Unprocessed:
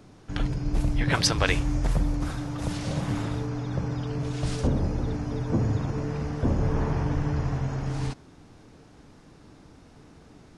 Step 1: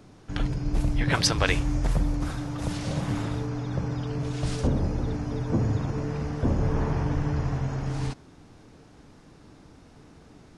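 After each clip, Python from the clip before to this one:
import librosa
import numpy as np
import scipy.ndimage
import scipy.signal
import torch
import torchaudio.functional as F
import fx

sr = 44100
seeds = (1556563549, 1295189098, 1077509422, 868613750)

y = x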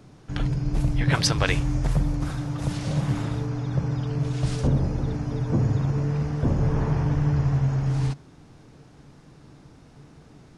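y = fx.peak_eq(x, sr, hz=140.0, db=9.0, octaves=0.3)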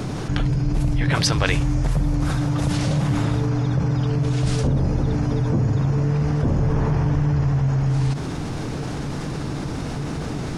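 y = fx.env_flatten(x, sr, amount_pct=70)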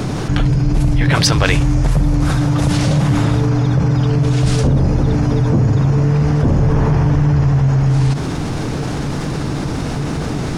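y = fx.leveller(x, sr, passes=1)
y = y * librosa.db_to_amplitude(3.0)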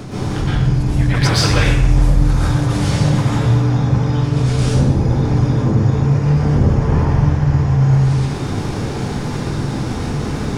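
y = fx.rev_plate(x, sr, seeds[0], rt60_s=0.77, hf_ratio=0.95, predelay_ms=105, drr_db=-8.5)
y = y * librosa.db_to_amplitude(-10.0)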